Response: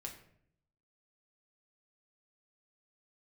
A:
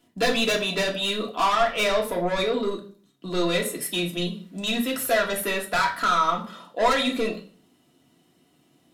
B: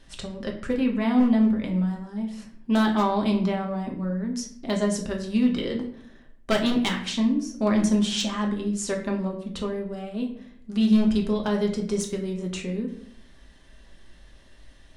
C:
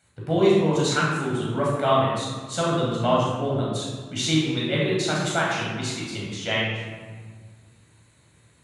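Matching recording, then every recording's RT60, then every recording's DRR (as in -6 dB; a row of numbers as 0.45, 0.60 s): B; 0.40, 0.65, 1.6 s; -1.5, 0.5, -5.5 dB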